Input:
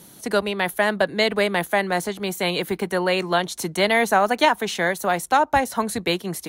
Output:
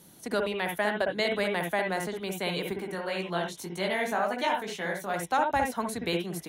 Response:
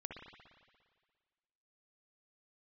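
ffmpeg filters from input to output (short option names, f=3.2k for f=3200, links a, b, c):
-filter_complex "[0:a]asettb=1/sr,asplit=3[a][b][c];[a]atrim=end=2.734[d];[b]atrim=start=2.73:end=5.14,asetpts=PTS-STARTPTS,afade=t=in:d=0.004:c=qsin,afade=t=out:st=2.406:d=0.004:c=qsin,flanger=delay=15.5:depth=5.5:speed=1.9[e];[c]atrim=start=5.136[f];[d][e]acrossfade=d=0.004:c1=hsin:c2=qsin[g];[g][f]acrossfade=d=0.004:c1=qsin:c2=hsin[h];[1:a]atrim=start_sample=2205,afade=t=out:st=0.15:d=0.01,atrim=end_sample=7056[i];[h][i]afir=irnorm=-1:irlink=0,volume=-3dB"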